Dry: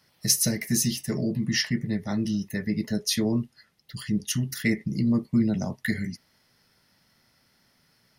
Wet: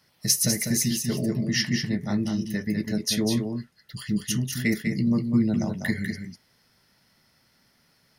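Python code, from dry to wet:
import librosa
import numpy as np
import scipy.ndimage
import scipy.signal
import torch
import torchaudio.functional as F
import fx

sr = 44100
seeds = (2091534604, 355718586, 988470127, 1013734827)

y = x + 10.0 ** (-6.0 / 20.0) * np.pad(x, (int(198 * sr / 1000.0), 0))[:len(x)]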